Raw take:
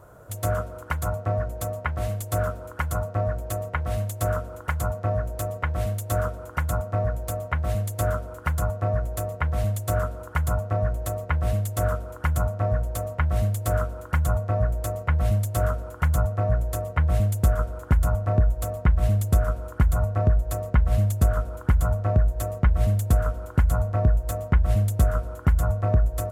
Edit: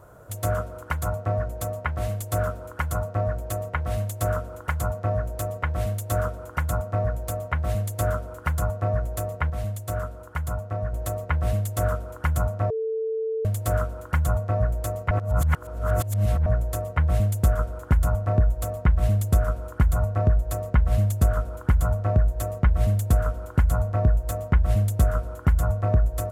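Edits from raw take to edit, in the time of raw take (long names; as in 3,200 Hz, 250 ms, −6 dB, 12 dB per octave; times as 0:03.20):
0:09.50–0:10.93: clip gain −4.5 dB
0:12.70–0:13.45: beep over 444 Hz −24 dBFS
0:15.11–0:16.46: reverse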